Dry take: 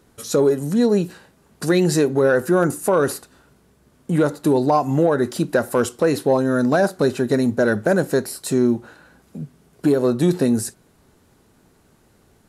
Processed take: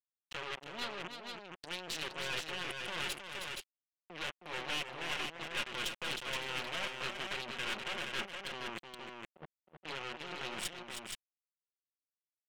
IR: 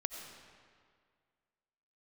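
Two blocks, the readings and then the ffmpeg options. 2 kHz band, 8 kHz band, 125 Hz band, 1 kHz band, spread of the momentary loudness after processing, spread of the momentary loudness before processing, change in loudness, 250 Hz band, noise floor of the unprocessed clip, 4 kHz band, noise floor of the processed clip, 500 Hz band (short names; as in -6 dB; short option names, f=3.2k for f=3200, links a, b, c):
-10.0 dB, -15.5 dB, -29.0 dB, -17.5 dB, 10 LU, 7 LU, -20.5 dB, -32.0 dB, -57 dBFS, -2.0 dB, under -85 dBFS, -29.0 dB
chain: -filter_complex "[0:a]aeval=exprs='if(lt(val(0),0),0.708*val(0),val(0))':c=same,anlmdn=251,aecho=1:1:5.6:0.94,asplit=2[a][b];[b]acontrast=41,volume=2.5dB[c];[a][c]amix=inputs=2:normalize=0,alimiter=limit=-4dB:level=0:latency=1:release=16,areverse,acompressor=threshold=-24dB:ratio=16,areverse,acrusher=bits=3:mix=0:aa=0.5,bandpass=f=3k:t=q:w=3.1:csg=0,aeval=exprs='(tanh(112*val(0)+0.55)-tanh(0.55))/112':c=same,aecho=1:1:315|472:0.447|0.596,volume=9.5dB"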